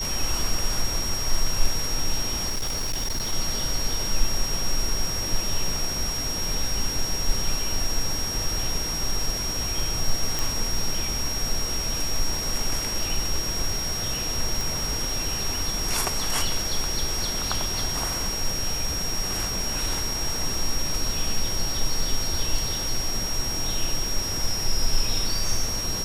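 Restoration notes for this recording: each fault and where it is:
tone 5600 Hz -28 dBFS
2.49–3.33 clipped -22.5 dBFS
10.39 pop
14.61 pop

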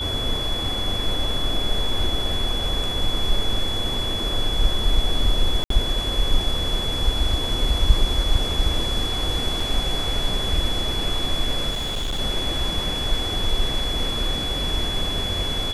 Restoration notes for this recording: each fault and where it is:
tone 3400 Hz -26 dBFS
5.64–5.7 gap 63 ms
9.6 gap 3.7 ms
11.7–12.2 clipped -22 dBFS

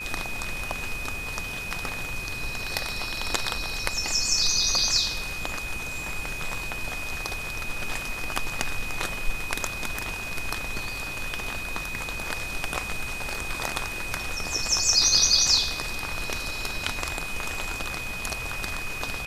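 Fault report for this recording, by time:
tone 2500 Hz -33 dBFS

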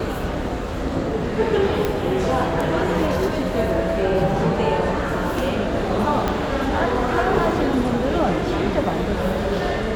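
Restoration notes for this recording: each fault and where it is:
1.85 pop -8 dBFS
6.28 pop -8 dBFS

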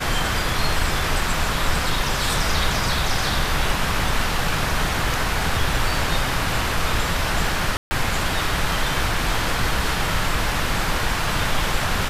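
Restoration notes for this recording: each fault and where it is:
7.77–7.91 gap 0.14 s

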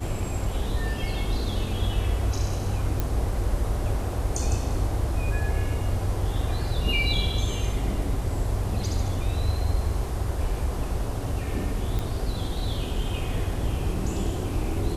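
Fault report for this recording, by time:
3 pop -12 dBFS
11.99 pop

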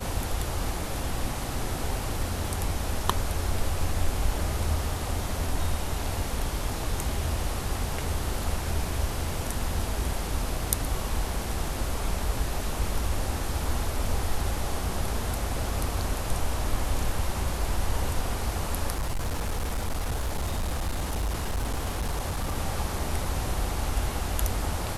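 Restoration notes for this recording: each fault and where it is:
18.91–22.56 clipped -24.5 dBFS

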